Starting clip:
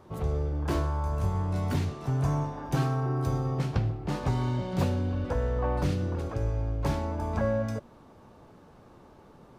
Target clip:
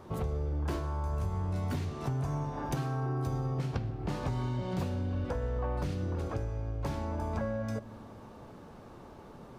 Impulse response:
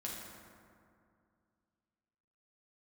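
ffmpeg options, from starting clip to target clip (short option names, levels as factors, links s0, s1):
-filter_complex "[0:a]acompressor=threshold=0.02:ratio=6,asplit=2[s0][s1];[1:a]atrim=start_sample=2205,asetrate=48510,aresample=44100[s2];[s1][s2]afir=irnorm=-1:irlink=0,volume=0.224[s3];[s0][s3]amix=inputs=2:normalize=0,volume=1.33"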